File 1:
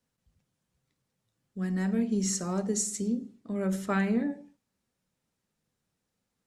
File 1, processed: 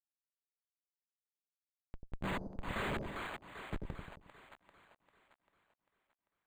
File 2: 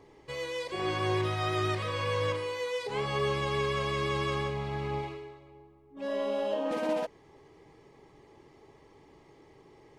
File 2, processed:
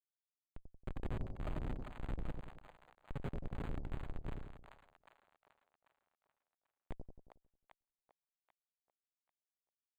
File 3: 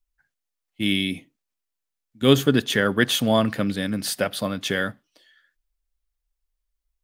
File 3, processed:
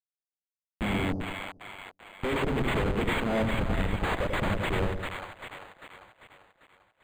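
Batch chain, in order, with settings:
hum notches 60/120/180/240/300/360/420/480/540 Hz; touch-sensitive flanger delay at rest 7.2 ms, full sweep at -24.5 dBFS; RIAA curve recording; Schmitt trigger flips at -26 dBFS; two-band feedback delay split 670 Hz, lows 90 ms, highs 395 ms, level -4 dB; decimation joined by straight lines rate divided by 8×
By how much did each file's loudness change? -12.0 LU, -15.5 LU, -7.5 LU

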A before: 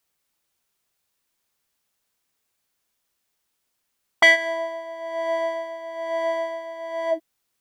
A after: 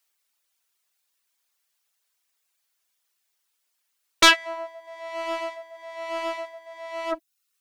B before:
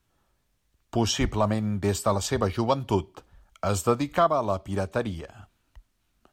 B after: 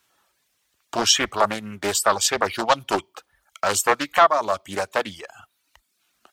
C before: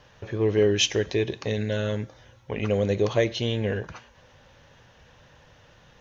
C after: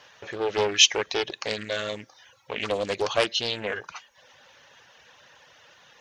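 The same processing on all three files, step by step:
high-pass 1.2 kHz 6 dB/octave; reverb removal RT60 0.67 s; loudspeaker Doppler distortion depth 0.46 ms; peak normalisation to -3 dBFS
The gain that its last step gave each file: +2.5 dB, +11.5 dB, +7.5 dB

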